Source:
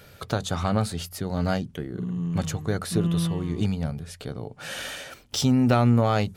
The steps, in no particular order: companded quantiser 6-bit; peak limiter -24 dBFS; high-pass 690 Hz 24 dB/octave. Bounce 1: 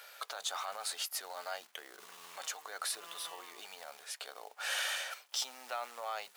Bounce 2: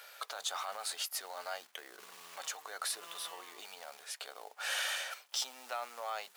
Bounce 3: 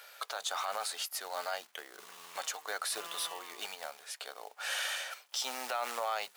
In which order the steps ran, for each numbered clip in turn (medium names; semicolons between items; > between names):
companded quantiser > peak limiter > high-pass; peak limiter > companded quantiser > high-pass; companded quantiser > high-pass > peak limiter